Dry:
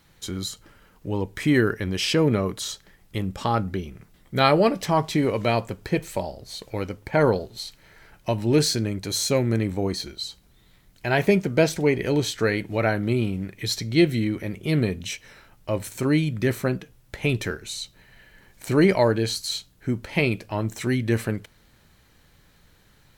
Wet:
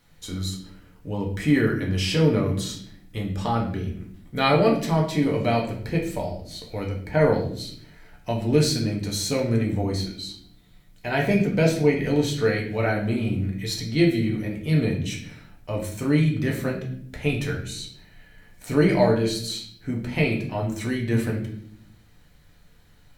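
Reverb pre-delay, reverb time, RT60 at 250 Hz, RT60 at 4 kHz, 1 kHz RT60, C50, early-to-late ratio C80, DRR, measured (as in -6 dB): 4 ms, 0.60 s, 1.1 s, 0.50 s, 0.50 s, 7.5 dB, 11.5 dB, -1.0 dB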